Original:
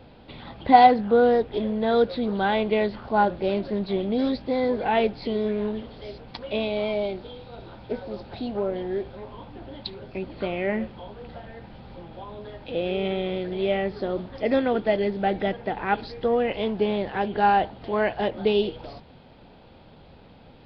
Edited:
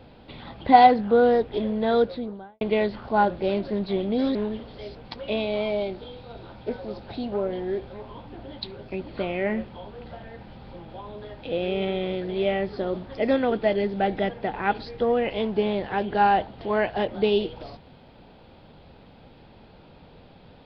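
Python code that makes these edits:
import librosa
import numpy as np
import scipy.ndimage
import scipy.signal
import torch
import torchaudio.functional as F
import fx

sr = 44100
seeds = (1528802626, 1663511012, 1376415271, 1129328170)

y = fx.studio_fade_out(x, sr, start_s=1.89, length_s=0.72)
y = fx.edit(y, sr, fx.cut(start_s=4.35, length_s=1.23), tone=tone)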